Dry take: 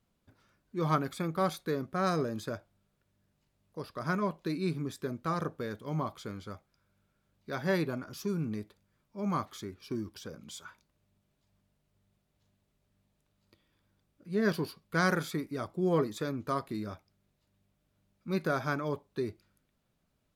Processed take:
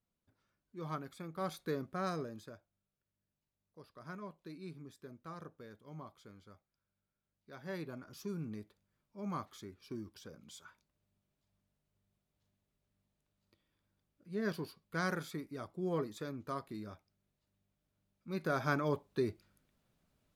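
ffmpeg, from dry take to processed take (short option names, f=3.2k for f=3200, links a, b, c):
-af "volume=11dB,afade=t=in:st=1.31:d=0.39:silence=0.398107,afade=t=out:st=1.7:d=0.84:silence=0.281838,afade=t=in:st=7.6:d=0.6:silence=0.421697,afade=t=in:st=18.34:d=0.42:silence=0.398107"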